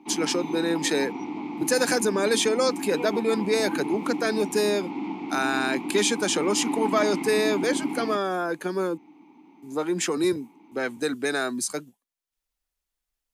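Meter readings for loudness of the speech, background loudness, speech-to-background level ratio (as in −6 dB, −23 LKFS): −25.5 LKFS, −32.0 LKFS, 6.5 dB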